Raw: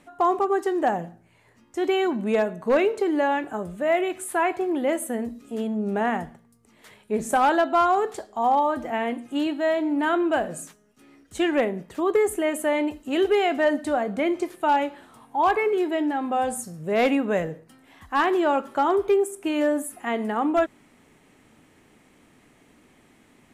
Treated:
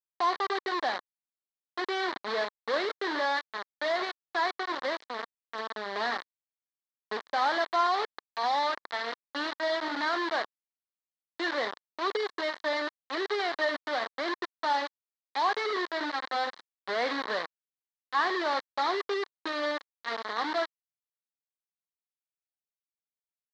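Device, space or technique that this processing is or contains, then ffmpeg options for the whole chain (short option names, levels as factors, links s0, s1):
hand-held game console: -filter_complex "[0:a]asettb=1/sr,asplit=3[s0][s1][s2];[s0]atrim=end=4.524[s3];[s1]atrim=start=4.52:end=4.92,asetpts=PTS-STARTPTS,afade=t=in:d=0.004:c=qsin,afade=t=out:st=0.396:d=0.004:c=qsin,lowshelf=f=300:g=-2.5[s4];[s2]atrim=start=4.916[s5];[s3][s4]acrossfade=d=0.004:c1=hsin:c2=qsin[s6];[s6][s5]acrossfade=d=0.004:c1=qsin:c2=hsin,acrusher=bits=3:mix=0:aa=0.000001,highpass=420,equalizer=f=1100:t=q:w=4:g=6,equalizer=f=1800:t=q:w=4:g=7,equalizer=f=2600:t=q:w=4:g=-9,equalizer=f=4100:t=q:w=4:g=8,lowpass=f=4400:w=0.5412,lowpass=f=4400:w=1.3066,volume=0.376"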